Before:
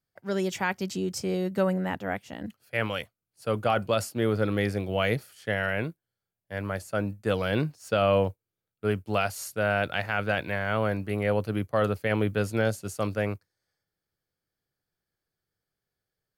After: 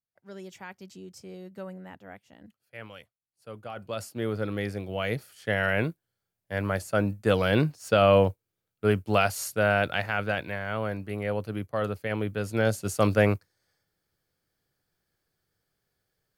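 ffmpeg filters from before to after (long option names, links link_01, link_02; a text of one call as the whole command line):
ffmpeg -i in.wav -af "volume=14.5dB,afade=type=in:start_time=3.74:duration=0.43:silence=0.316228,afade=type=in:start_time=5.03:duration=0.78:silence=0.398107,afade=type=out:start_time=9.47:duration=1.12:silence=0.421697,afade=type=in:start_time=12.42:duration=0.7:silence=0.281838" out.wav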